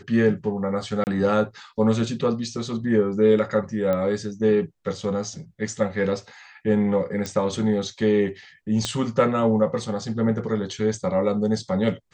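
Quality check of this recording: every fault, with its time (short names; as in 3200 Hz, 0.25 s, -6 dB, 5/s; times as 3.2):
1.04–1.07 gap 29 ms
3.93 pop -14 dBFS
7.26 pop -14 dBFS
8.85 pop -10 dBFS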